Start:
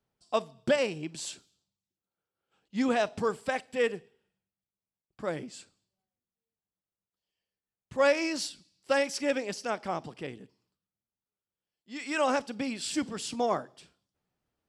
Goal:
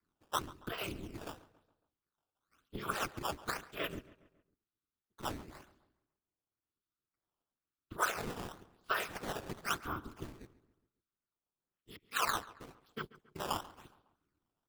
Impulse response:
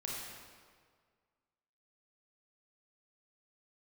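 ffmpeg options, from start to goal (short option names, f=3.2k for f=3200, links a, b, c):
-filter_complex "[0:a]asettb=1/sr,asplit=3[a][b][c];[a]atrim=end=11.964[d];[b]atrim=start=11.96:end=13.36,asetpts=PTS-STARTPTS,afade=t=in:d=0.004:c=qsin,afade=t=out:st=1.396:d=0.004:c=qsin,agate=range=-39dB:threshold=-30dB:ratio=16:detection=peak[e];[c]atrim=start=13.356[f];[d][e]acrossfade=d=0.004:c1=hsin:c2=qsin[g];[g][f]acrossfade=d=0.004:c1=qsin:c2=hsin,firequalizer=gain_entry='entry(100,0);entry(170,10);entry(260,-18);entry(680,-24);entry(1300,-3);entry(1800,-22);entry(3600,-12);entry(6300,-27)':delay=0.05:min_phase=1,afftfilt=real='hypot(re,im)*cos(2*PI*random(0))':imag='hypot(re,im)*sin(2*PI*random(1))':win_size=512:overlap=0.75,acompressor=threshold=-43dB:ratio=20,bass=f=250:g=-13,treble=f=4k:g=-12,crystalizer=i=6.5:c=0,acrusher=samples=12:mix=1:aa=0.000001:lfo=1:lforange=19.2:lforate=0.98,aeval=exprs='val(0)*sin(2*PI*110*n/s)':c=same,asplit=2[h][i];[i]adelay=138,lowpass=f=2.9k:p=1,volume=-18dB,asplit=2[j][k];[k]adelay=138,lowpass=f=2.9k:p=1,volume=0.48,asplit=2[l][m];[m]adelay=138,lowpass=f=2.9k:p=1,volume=0.48,asplit=2[n][o];[o]adelay=138,lowpass=f=2.9k:p=1,volume=0.48[p];[h][j][l][n][p]amix=inputs=5:normalize=0,volume=15dB"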